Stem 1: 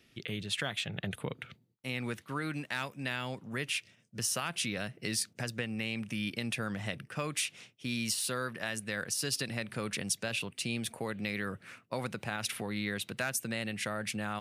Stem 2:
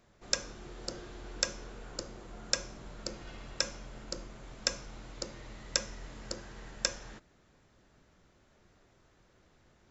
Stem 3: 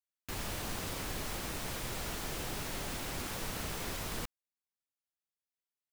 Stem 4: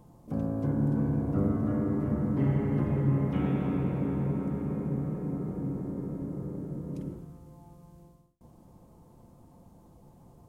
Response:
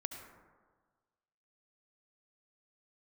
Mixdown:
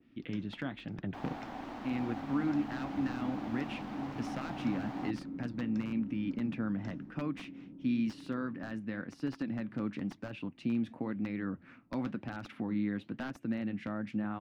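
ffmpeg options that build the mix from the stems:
-filter_complex "[0:a]aeval=exprs='(mod(12.6*val(0)+1,2)-1)/12.6':channel_layout=same,adynamicequalizer=threshold=0.00316:dfrequency=1900:dqfactor=0.7:tfrequency=1900:tqfactor=0.7:attack=5:release=100:ratio=0.375:range=3.5:mode=cutabove:tftype=highshelf,volume=1dB[link_01];[1:a]volume=-15dB[link_02];[2:a]aeval=exprs='val(0)*sin(2*PI*760*n/s)':channel_layout=same,adelay=850,volume=2.5dB[link_03];[3:a]adelay=1600,volume=-18dB[link_04];[link_01][link_02][link_03][link_04]amix=inputs=4:normalize=0,firequalizer=gain_entry='entry(130,0);entry(280,14);entry(410,-3);entry(860,0);entry(9100,-28)':delay=0.05:min_phase=1,flanger=delay=2.1:depth=7.5:regen=-73:speed=0.97:shape=sinusoidal"

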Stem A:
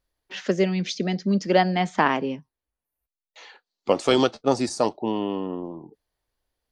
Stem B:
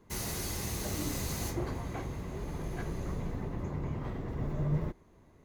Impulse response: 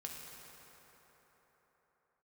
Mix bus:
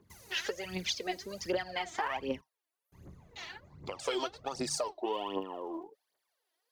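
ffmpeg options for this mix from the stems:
-filter_complex "[0:a]acompressor=threshold=-26dB:ratio=6,highpass=510,volume=-1.5dB[link_01];[1:a]acompressor=threshold=-46dB:ratio=4,volume=-10.5dB,asplit=3[link_02][link_03][link_04];[link_02]atrim=end=2.41,asetpts=PTS-STARTPTS,afade=type=out:start_time=2.406:duration=0.004:curve=hsin[link_05];[link_03]atrim=start=2.41:end=2.92,asetpts=PTS-STARTPTS,volume=0[link_06];[link_04]atrim=start=2.92,asetpts=PTS-STARTPTS,afade=type=in:duration=0.004:curve=hsin[link_07];[link_05][link_06][link_07]concat=n=3:v=0:a=1[link_08];[link_01][link_08]amix=inputs=2:normalize=0,highpass=75,aphaser=in_gain=1:out_gain=1:delay=3.2:decay=0.72:speed=1.3:type=triangular,alimiter=limit=-22dB:level=0:latency=1:release=236"

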